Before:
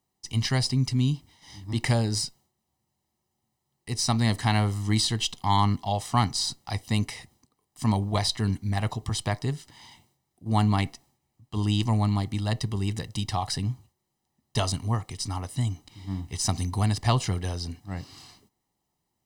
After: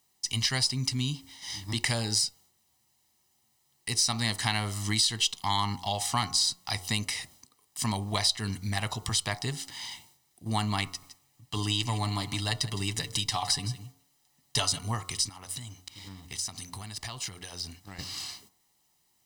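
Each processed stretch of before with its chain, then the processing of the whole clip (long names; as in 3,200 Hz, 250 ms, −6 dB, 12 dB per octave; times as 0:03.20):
0:10.86–0:14.79: comb filter 6.9 ms, depth 45% + single-tap delay 162 ms −16.5 dB
0:15.29–0:17.99: mu-law and A-law mismatch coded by A + downward compressor 8 to 1, threshold −39 dBFS
whole clip: tilt shelving filter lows −7 dB, about 1,200 Hz; hum removal 90.25 Hz, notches 16; downward compressor 2 to 1, threshold −37 dBFS; level +6 dB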